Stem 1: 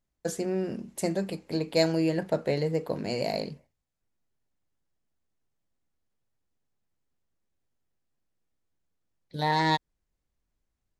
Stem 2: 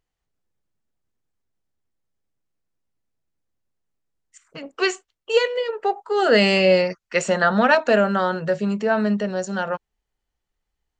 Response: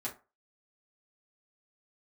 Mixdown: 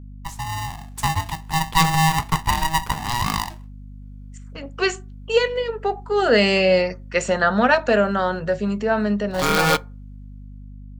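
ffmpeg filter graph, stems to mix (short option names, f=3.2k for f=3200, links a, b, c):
-filter_complex "[0:a]lowshelf=f=260:t=q:w=3:g=-7.5,aeval=exprs='val(0)*sgn(sin(2*PI*480*n/s))':c=same,volume=-5dB,asplit=2[a][b];[b]volume=-17.5dB[c];[1:a]volume=-10.5dB,asplit=2[d][e];[e]volume=-13.5dB[f];[2:a]atrim=start_sample=2205[g];[c][f]amix=inputs=2:normalize=0[h];[h][g]afir=irnorm=-1:irlink=0[i];[a][d][i]amix=inputs=3:normalize=0,dynaudnorm=f=240:g=7:m=10dB,aeval=exprs='val(0)+0.0141*(sin(2*PI*50*n/s)+sin(2*PI*2*50*n/s)/2+sin(2*PI*3*50*n/s)/3+sin(2*PI*4*50*n/s)/4+sin(2*PI*5*50*n/s)/5)':c=same"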